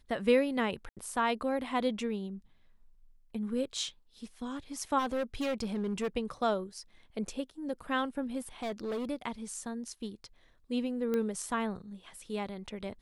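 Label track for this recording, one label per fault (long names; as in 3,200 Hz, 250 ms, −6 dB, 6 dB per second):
0.890000	0.970000	drop-out 77 ms
4.980000	6.080000	clipping −28.5 dBFS
8.620000	9.100000	clipping −31.5 dBFS
11.140000	11.140000	click −20 dBFS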